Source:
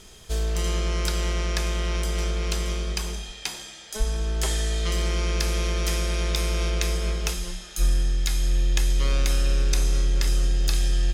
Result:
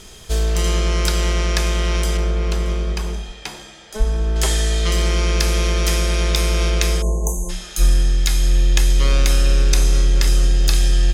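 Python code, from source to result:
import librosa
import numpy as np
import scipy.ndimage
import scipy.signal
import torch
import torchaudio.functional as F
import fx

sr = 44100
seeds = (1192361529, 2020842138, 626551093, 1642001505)

y = fx.high_shelf(x, sr, hz=2300.0, db=-11.0, at=(2.17, 4.36))
y = fx.spec_erase(y, sr, start_s=7.02, length_s=0.48, low_hz=1100.0, high_hz=6000.0)
y = y * librosa.db_to_amplitude(7.0)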